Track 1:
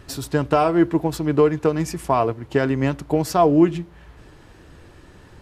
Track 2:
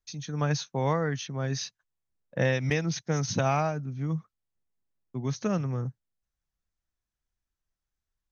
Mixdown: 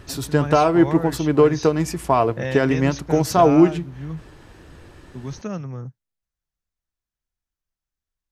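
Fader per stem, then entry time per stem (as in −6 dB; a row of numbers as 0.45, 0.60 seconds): +1.5, −1.5 decibels; 0.00, 0.00 seconds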